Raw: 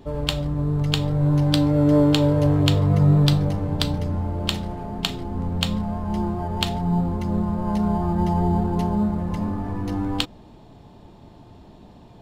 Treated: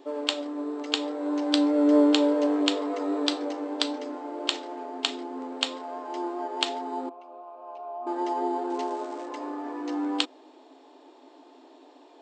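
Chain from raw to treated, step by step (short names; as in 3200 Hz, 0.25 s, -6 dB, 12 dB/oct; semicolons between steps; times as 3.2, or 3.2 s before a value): 7.09–8.07 vowel filter a; 8.69–9.27 crackle 490/s -37 dBFS; FFT band-pass 250–8400 Hz; gain -1.5 dB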